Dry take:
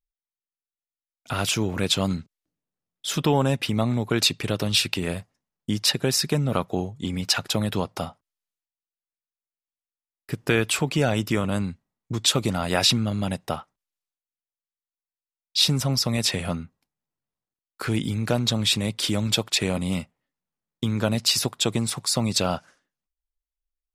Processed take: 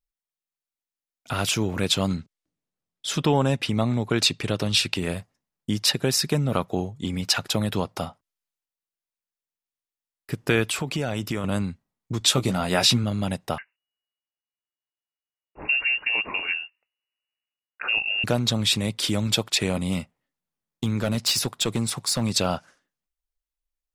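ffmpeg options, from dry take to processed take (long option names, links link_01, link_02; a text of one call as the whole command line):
ffmpeg -i in.wav -filter_complex "[0:a]asettb=1/sr,asplit=3[link_01][link_02][link_03];[link_01]atrim=end=2.054[link_04];[link_02]atrim=start=2.05:end=4.96,asetpts=PTS-STARTPTS,afade=type=in:duration=0.004:curve=qsin,afade=type=out:start_time=2.906:duration=0.004:curve=qsin,lowpass=10000[link_05];[link_03]atrim=start=4.956[link_06];[link_04][link_05]acrossfade=duration=0.004:curve1=hsin:curve2=qsin[link_07];[link_07][link_06]acrossfade=duration=0.004:curve1=qsin:curve2=hsin,asettb=1/sr,asplit=3[link_08][link_09][link_10];[link_08]atrim=end=10.644[link_11];[link_09]atrim=start=10.64:end=11.44,asetpts=PTS-STARTPTS,afade=type=in:duration=0.004:curve=qsin,afade=type=out:start_time=0.796:duration=0.004:curve=qsin,acompressor=threshold=-23dB:ratio=3:attack=3.2:release=140:knee=1:detection=peak[link_12];[link_10]atrim=start=11.436[link_13];[link_11][link_12]acrossfade=duration=0.004:curve1=hsin:curve2=qsin[link_14];[link_14][link_13]acrossfade=duration=0.004:curve1=qsin:curve2=hsin,asettb=1/sr,asplit=3[link_15][link_16][link_17];[link_15]atrim=end=12.194[link_18];[link_16]atrim=start=12.19:end=13.04,asetpts=PTS-STARTPTS,afade=type=in:duration=0.004:curve=qsin,afade=type=out:start_time=0.846:duration=0.004:curve=qsin,asplit=2[link_19][link_20];[link_20]adelay=16,volume=-7.5dB[link_21];[link_19][link_21]amix=inputs=2:normalize=0,atrim=end_sample=37485[link_22];[link_17]atrim=start=13.036[link_23];[link_18][link_22]acrossfade=duration=0.004:curve1=hsin:curve2=qsin[link_24];[link_24][link_23]acrossfade=duration=0.004:curve1=qsin:curve2=hsin,asettb=1/sr,asplit=3[link_25][link_26][link_27];[link_25]atrim=end=13.584[link_28];[link_26]atrim=start=13.58:end=18.24,asetpts=PTS-STARTPTS,afade=type=in:duration=0.004:curve=qsin,afade=type=out:start_time=4.656:duration=0.004:curve=qsin,lowpass=frequency=2500:width_type=q:width=0.5098,lowpass=frequency=2500:width_type=q:width=0.6013,lowpass=frequency=2500:width_type=q:width=0.9,lowpass=frequency=2500:width_type=q:width=2.563,afreqshift=-2900[link_29];[link_27]atrim=start=18.236[link_30];[link_28][link_29]acrossfade=duration=0.004:curve1=hsin:curve2=qsin[link_31];[link_31][link_30]acrossfade=duration=0.004:curve1=qsin:curve2=hsin,asettb=1/sr,asplit=3[link_32][link_33][link_34];[link_32]atrim=end=19.944[link_35];[link_33]atrim=start=19.94:end=22.32,asetpts=PTS-STARTPTS,afade=type=in:duration=0.004:curve=qsin,afade=type=out:start_time=2.376:duration=0.004:curve=qsin,asoftclip=type=hard:threshold=-17dB[link_36];[link_34]atrim=start=22.316[link_37];[link_35][link_36]acrossfade=duration=0.004:curve1=hsin:curve2=qsin[link_38];[link_38][link_37]acrossfade=duration=0.004:curve1=qsin:curve2=hsin" out.wav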